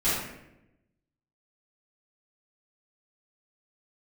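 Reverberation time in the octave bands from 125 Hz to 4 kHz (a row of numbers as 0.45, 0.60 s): 1.3, 1.2, 1.0, 0.75, 0.80, 0.55 s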